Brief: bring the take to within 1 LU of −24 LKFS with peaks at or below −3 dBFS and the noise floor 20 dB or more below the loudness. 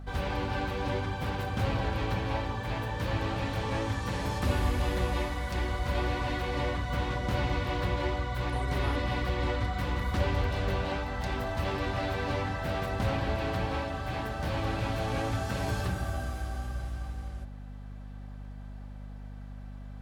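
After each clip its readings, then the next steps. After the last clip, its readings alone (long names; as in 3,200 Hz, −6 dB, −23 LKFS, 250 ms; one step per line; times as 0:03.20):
mains hum 50 Hz; hum harmonics up to 250 Hz; level of the hum −40 dBFS; integrated loudness −32.0 LKFS; sample peak −15.5 dBFS; target loudness −24.0 LKFS
→ hum removal 50 Hz, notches 5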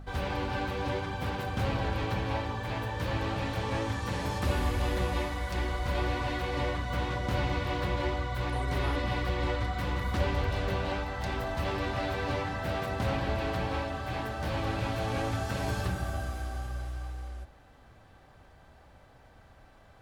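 mains hum none found; integrated loudness −32.5 LKFS; sample peak −16.0 dBFS; target loudness −24.0 LKFS
→ level +8.5 dB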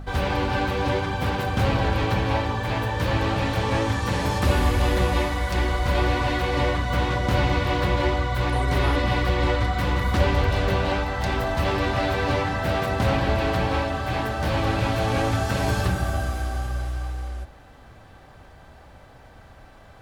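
integrated loudness −24.0 LKFS; sample peak −7.5 dBFS; background noise floor −48 dBFS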